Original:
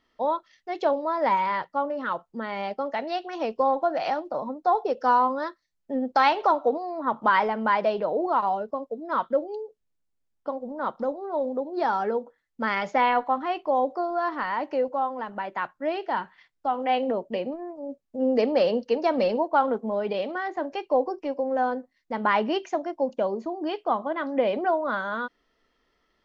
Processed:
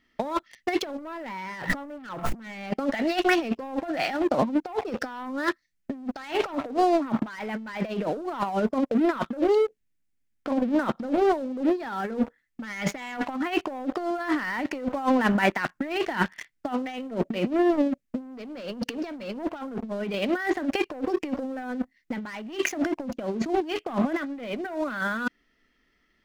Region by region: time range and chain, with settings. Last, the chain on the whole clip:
0:00.98–0:02.71: high-shelf EQ 3,000 Hz −9 dB + envelope flattener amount 100%
whole clip: octave-band graphic EQ 250/500/1,000/2,000/4,000 Hz +4/−7/−9/+6/−4 dB; leveller curve on the samples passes 3; compressor whose output falls as the input rises −27 dBFS, ratio −0.5; level +1 dB

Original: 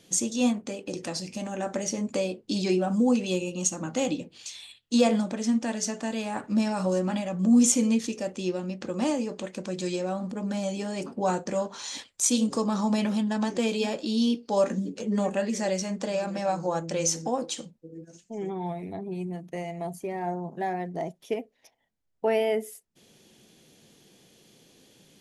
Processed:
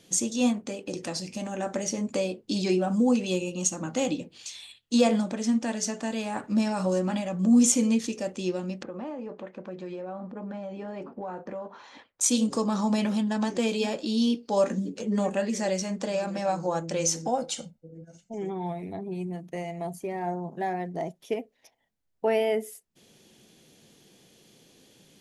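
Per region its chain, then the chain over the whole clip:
0:08.83–0:12.21: low-pass filter 1,500 Hz + low-shelf EQ 320 Hz −8.5 dB + downward compressor, threshold −32 dBFS
0:17.28–0:18.34: comb filter 1.4 ms, depth 63% + one half of a high-frequency compander decoder only
whole clip: no processing

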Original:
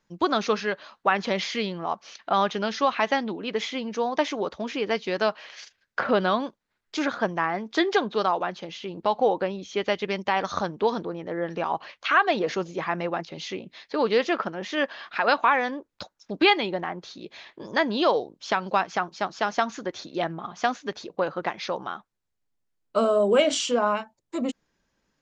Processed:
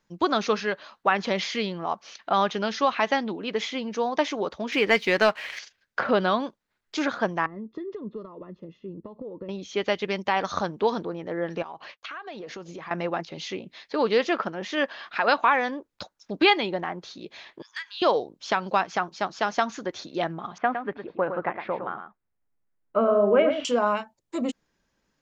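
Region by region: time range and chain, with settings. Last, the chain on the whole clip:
0:04.72–0:05.59: parametric band 2,100 Hz +9 dB 0.72 octaves + leveller curve on the samples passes 1
0:07.46–0:09.49: downward compressor, threshold −26 dBFS + moving average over 57 samples
0:11.62–0:12.91: downward expander −45 dBFS + downward compressor 8 to 1, threshold −35 dBFS
0:17.62–0:18.02: inverse Chebyshev high-pass filter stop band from 580 Hz, stop band 50 dB + downward compressor 2 to 1, threshold −35 dBFS + saturating transformer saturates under 1,400 Hz
0:20.58–0:23.65: low-pass filter 2,200 Hz 24 dB per octave + single-tap delay 110 ms −8 dB
whole clip: no processing

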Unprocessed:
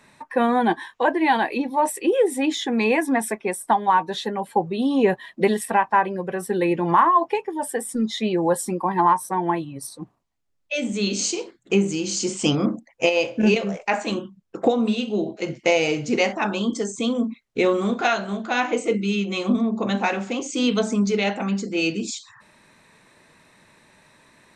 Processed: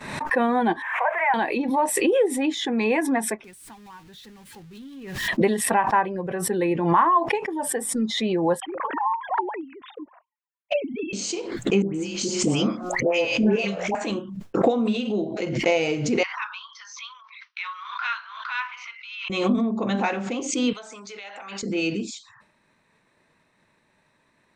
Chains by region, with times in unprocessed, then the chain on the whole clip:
0:00.82–0:01.34: spike at every zero crossing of −14.5 dBFS + elliptic band-pass filter 620–2,200 Hz
0:03.44–0:05.28: converter with a step at zero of −25.5 dBFS + guitar amp tone stack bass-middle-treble 6-0-2
0:08.60–0:11.13: three sine waves on the formant tracks + low-pass filter 2,600 Hz + flanger swept by the level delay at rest 5.2 ms, full sweep at −16.5 dBFS
0:11.82–0:13.95: hum removal 180.1 Hz, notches 8 + all-pass dispersion highs, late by 126 ms, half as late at 1,200 Hz
0:16.23–0:19.30: Chebyshev band-pass filter 990–5,900 Hz, order 5 + high-frequency loss of the air 110 metres + one half of a high-frequency compander encoder only
0:20.73–0:21.63: high-pass filter 900 Hz + downward compressor 5 to 1, threshold −33 dBFS
whole clip: downward expander −48 dBFS; high-shelf EQ 4,800 Hz −7.5 dB; background raised ahead of every attack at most 54 dB per second; level −2 dB

